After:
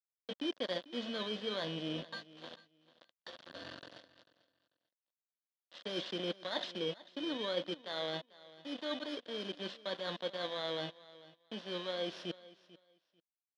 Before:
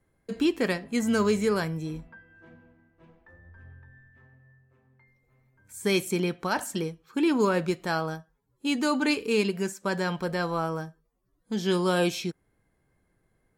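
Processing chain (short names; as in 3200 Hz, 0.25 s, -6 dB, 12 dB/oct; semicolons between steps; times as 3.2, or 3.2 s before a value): FFT order left unsorted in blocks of 16 samples; high shelf 2100 Hz +8.5 dB; notch 2700 Hz, Q 13; reverse; compressor 8:1, threshold -38 dBFS, peak gain reduction 21.5 dB; reverse; sample gate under -43 dBFS; vocal rider within 4 dB 2 s; speaker cabinet 340–3600 Hz, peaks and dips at 400 Hz -8 dB, 560 Hz +5 dB, 850 Hz -8 dB, 1300 Hz -7 dB, 2300 Hz -10 dB, 3400 Hz +5 dB; feedback echo 0.443 s, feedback 20%, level -19 dB; gain +9.5 dB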